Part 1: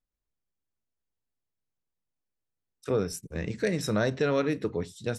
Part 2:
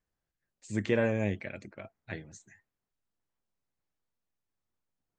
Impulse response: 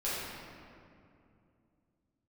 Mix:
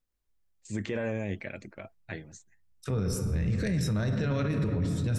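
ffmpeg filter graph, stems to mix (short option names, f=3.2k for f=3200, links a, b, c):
-filter_complex "[0:a]asubboost=boost=9:cutoff=140,volume=1.5dB,asplit=2[a][b];[b]volume=-12.5dB[c];[1:a]agate=range=-17dB:threshold=-54dB:ratio=16:detection=peak,volume=1.5dB[d];[2:a]atrim=start_sample=2205[e];[c][e]afir=irnorm=-1:irlink=0[f];[a][d][f]amix=inputs=3:normalize=0,alimiter=limit=-22dB:level=0:latency=1:release=22"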